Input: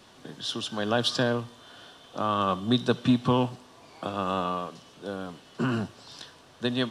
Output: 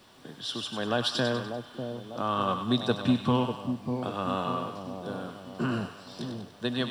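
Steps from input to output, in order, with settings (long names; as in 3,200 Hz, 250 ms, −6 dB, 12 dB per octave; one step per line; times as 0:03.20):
notch filter 6,500 Hz, Q 7.9
bit reduction 11 bits
echo with a time of its own for lows and highs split 850 Hz, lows 595 ms, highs 98 ms, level −7 dB
level −2.5 dB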